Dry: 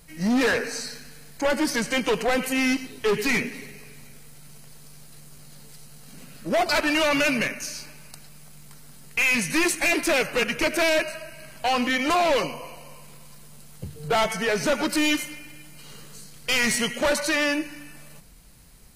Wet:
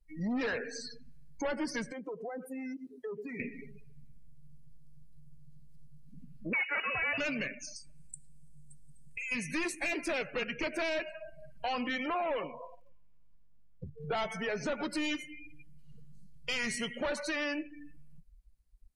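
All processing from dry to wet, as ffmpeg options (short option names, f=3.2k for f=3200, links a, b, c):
-filter_complex "[0:a]asettb=1/sr,asplit=3[a][b][c];[a]atrim=end=1.924[d];[b]atrim=start=1.92:end=3.4,asetpts=PTS-STARTPTS,afade=t=in:d=0.004:c=qsin,afade=t=out:st=1.476:d=0.004:c=qsin,highpass=f=230:p=1,equalizer=f=2.7k:t=o:w=1.4:g=-10,acompressor=threshold=-36dB:ratio=2.5:attack=3.2:release=140:knee=1:detection=peak[e];[c]atrim=start=3.396[f];[d][e]acrossfade=d=0.004:c1=hsin:c2=qsin[g];[g][f]acrossfade=d=0.004:c1=qsin:c2=hsin,asettb=1/sr,asplit=3[h][i][j];[h]atrim=end=6.534[k];[i]atrim=start=6.53:end=7.18,asetpts=PTS-STARTPTS,afade=t=in:d=0.004:c=qsin,afade=t=out:st=0.646:d=0.004:c=qsin,equalizer=f=930:w=1.3:g=5.5,lowpass=f=2.5k:t=q:w=0.5098,lowpass=f=2.5k:t=q:w=0.6013,lowpass=f=2.5k:t=q:w=0.9,lowpass=f=2.5k:t=q:w=2.563,afreqshift=-2900[l];[j]atrim=start=7.176[m];[k][l]acrossfade=d=0.004:c1=hsin:c2=qsin[n];[n][m]acrossfade=d=0.004:c1=qsin:c2=hsin,asettb=1/sr,asplit=3[o][p][q];[o]atrim=end=7.764[r];[p]atrim=start=7.76:end=9.32,asetpts=PTS-STARTPTS,afade=t=in:d=0.004:c=qsin,afade=t=out:st=1.556:d=0.004:c=qsin,acompressor=threshold=-36dB:ratio=3:attack=3.2:release=140:knee=1:detection=peak,equalizer=f=8.2k:w=1.7:g=13.5[s];[q]atrim=start=9.316[t];[r][s]acrossfade=d=0.004:c1=hsin:c2=qsin[u];[u][t]acrossfade=d=0.004:c1=qsin:c2=hsin,asettb=1/sr,asplit=3[v][w][x];[v]atrim=end=12.064[y];[w]atrim=start=12.06:end=14.11,asetpts=PTS-STARTPTS,afade=t=in:d=0.004:c=qsin,afade=t=out:st=2.046:d=0.004:c=qsin,bass=f=250:g=-5,treble=f=4k:g=-15,acrusher=bits=8:dc=4:mix=0:aa=0.000001[z];[x]atrim=start=14.106[aa];[y][z]acrossfade=d=0.004:c1=hsin:c2=qsin[ab];[ab][aa]acrossfade=d=0.004:c1=qsin:c2=hsin,afftdn=nr=35:nf=-32,acompressor=threshold=-41dB:ratio=2,adynamicequalizer=threshold=0.002:dfrequency=6100:dqfactor=0.7:tfrequency=6100:tqfactor=0.7:attack=5:release=100:ratio=0.375:range=2.5:mode=cutabove:tftype=highshelf"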